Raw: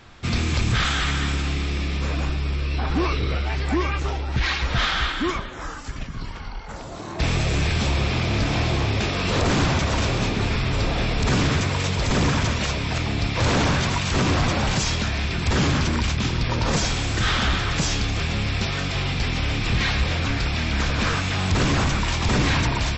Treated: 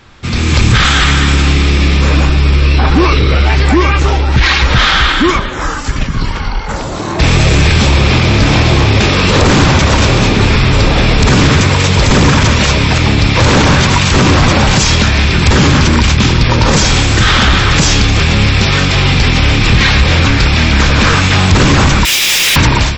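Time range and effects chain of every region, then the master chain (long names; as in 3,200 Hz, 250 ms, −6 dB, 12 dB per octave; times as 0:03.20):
0:22.05–0:22.56: inverse Chebyshev high-pass filter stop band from 390 Hz, stop band 80 dB + log-companded quantiser 2 bits + notch filter 4,300 Hz, Q 13
whole clip: notch filter 690 Hz, Q 12; automatic gain control gain up to 11.5 dB; brickwall limiter −7 dBFS; level +6 dB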